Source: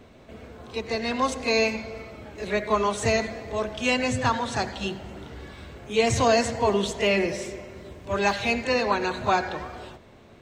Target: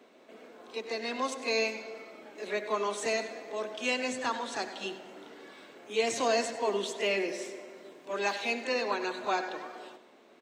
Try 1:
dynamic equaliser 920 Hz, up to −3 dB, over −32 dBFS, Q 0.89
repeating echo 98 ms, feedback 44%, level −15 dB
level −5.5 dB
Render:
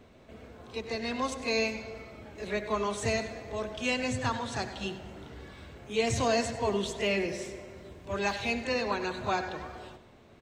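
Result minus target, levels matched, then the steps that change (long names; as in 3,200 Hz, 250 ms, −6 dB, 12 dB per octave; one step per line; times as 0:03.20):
250 Hz band +4.0 dB
add after dynamic equaliser: high-pass filter 260 Hz 24 dB per octave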